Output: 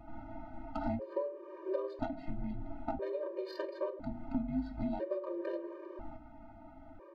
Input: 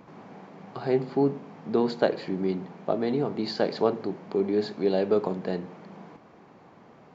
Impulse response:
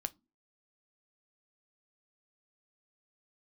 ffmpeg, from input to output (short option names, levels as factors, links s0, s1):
-filter_complex "[0:a]aeval=exprs='val(0)*sin(2*PI*160*n/s)':c=same,bandreject=f=60:t=h:w=6,bandreject=f=120:t=h:w=6,bandreject=f=180:t=h:w=6,bandreject=f=240:t=h:w=6,bandreject=f=300:t=h:w=6,bandreject=f=360:t=h:w=6,bandreject=f=420:t=h:w=6,bandreject=f=480:t=h:w=6,bandreject=f=540:t=h:w=6,acompressor=threshold=0.0178:ratio=12,aemphasis=mode=production:type=50fm,adynamicsmooth=sensitivity=2:basefreq=1300,aecho=1:1:3.3:0.65[s0];[1:a]atrim=start_sample=2205,asetrate=42336,aresample=44100[s1];[s0][s1]afir=irnorm=-1:irlink=0,afftfilt=real='re*gt(sin(2*PI*0.5*pts/sr)*(1-2*mod(floor(b*sr/1024/310),2)),0)':imag='im*gt(sin(2*PI*0.5*pts/sr)*(1-2*mod(floor(b*sr/1024/310),2)),0)':win_size=1024:overlap=0.75,volume=2"